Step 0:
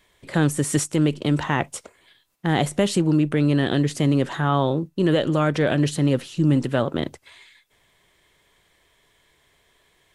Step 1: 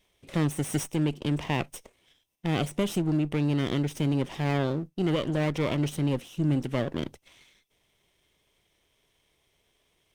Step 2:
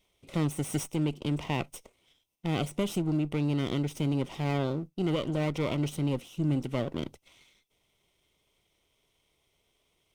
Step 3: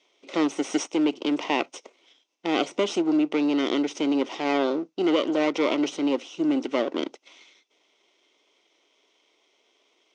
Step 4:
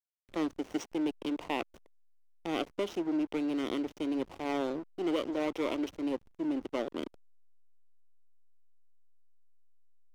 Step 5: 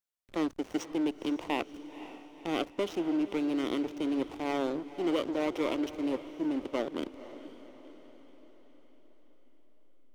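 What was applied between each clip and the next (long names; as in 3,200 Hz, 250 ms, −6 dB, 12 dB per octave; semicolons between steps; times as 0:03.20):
lower of the sound and its delayed copy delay 0.34 ms; level −7 dB
notch filter 1,700 Hz, Q 5.2; level −2.5 dB
elliptic band-pass filter 290–6,200 Hz, stop band 40 dB; level +9 dB
slack as between gear wheels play −27.5 dBFS; level −8.5 dB
feedback delay with all-pass diffusion 507 ms, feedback 53%, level −14 dB; level +1.5 dB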